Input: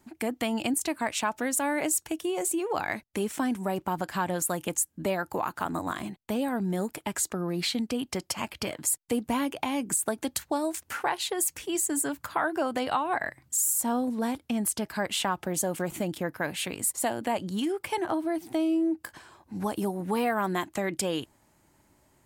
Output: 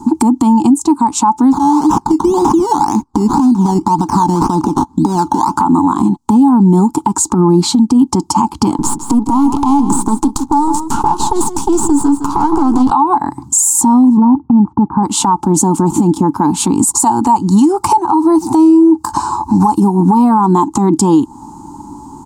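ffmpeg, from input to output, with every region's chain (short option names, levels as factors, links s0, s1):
-filter_complex "[0:a]asettb=1/sr,asplit=3[s0][s1][s2];[s0]atrim=end=1.524[s3];[s1]atrim=start=1.52:end=5.57,asetpts=PTS-STARTPTS,afade=t=in:d=0.004:c=qsin,afade=t=out:st=4.046:d=0.004:c=qsin,acompressor=threshold=0.0158:ratio=6:attack=3.2:release=140:knee=1:detection=peak,acrusher=samples=14:mix=1:aa=0.000001:lfo=1:lforange=8.4:lforate=1.9[s4];[s2]atrim=start=5.566[s5];[s3][s4]acrossfade=d=0.004:c1=hsin:c2=qsin[s6];[s6][s5]acrossfade=d=0.004:c1=qsin:c2=hsin,asettb=1/sr,asplit=3[s7][s8][s9];[s7]atrim=end=8.784[s10];[s8]atrim=start=8.78:end=12.91,asetpts=PTS-STARTPTS,afade=t=in:d=0.004:c=qsin,afade=t=out:st=4.126:d=0.004:c=qsin,acompressor=threshold=0.0224:ratio=3:attack=3.2:release=140:knee=1:detection=peak,aeval=exprs='max(val(0),0)':c=same,aecho=1:1:161:0.266,atrim=end_sample=182133[s11];[s9]atrim=start=12.906[s12];[s10][s11]acrossfade=d=0.004:c1=hsin:c2=qsin[s13];[s13][s12]acrossfade=d=0.004:c1=qsin:c2=hsin,asettb=1/sr,asplit=3[s14][s15][s16];[s14]atrim=end=14.174[s17];[s15]atrim=start=14.17:end=15.03,asetpts=PTS-STARTPTS,afade=t=in:d=0.004:c=qsin,afade=t=out:st=0.856:d=0.004:c=qsin,lowpass=f=1400:w=0.5412,lowpass=f=1400:w=1.3066,equalizer=f=130:w=1.4:g=5.5[s18];[s16]atrim=start=15.026[s19];[s17][s18]acrossfade=d=0.004:c1=hsin:c2=qsin[s20];[s20][s19]acrossfade=d=0.004:c1=qsin:c2=hsin,asettb=1/sr,asplit=3[s21][s22][s23];[s21]atrim=end=16.954[s24];[s22]atrim=start=16.95:end=19.8,asetpts=PTS-STARTPTS,afade=t=in:d=0.004:c=qsin,afade=t=out:st=2.846:d=0.004:c=qsin,bandreject=f=3300:w=6.3,acontrast=84,equalizer=f=270:w=0.64:g=-10[s25];[s23]atrim=start=19.796[s26];[s24][s25]acrossfade=d=0.004:c1=hsin:c2=qsin[s27];[s27][s26]acrossfade=d=0.004:c1=qsin:c2=hsin,firequalizer=gain_entry='entry(130,0);entry(200,7);entry(290,12);entry(590,-27);entry(860,14);entry(1800,-28);entry(4100,-10);entry(7100,-1);entry(13000,-18)':delay=0.05:min_phase=1,acompressor=threshold=0.0224:ratio=6,alimiter=level_in=25.1:limit=0.891:release=50:level=0:latency=1,volume=0.891"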